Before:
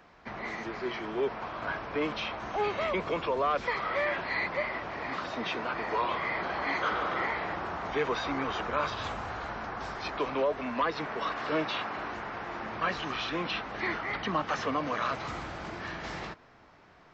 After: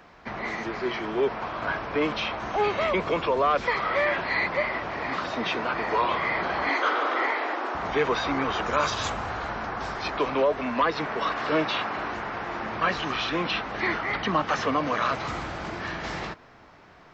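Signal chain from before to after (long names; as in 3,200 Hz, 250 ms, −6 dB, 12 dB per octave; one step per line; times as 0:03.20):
0:06.69–0:07.75: Butterworth high-pass 240 Hz 96 dB per octave
0:08.66–0:09.10: parametric band 6,900 Hz +14 dB 0.8 octaves
level +5.5 dB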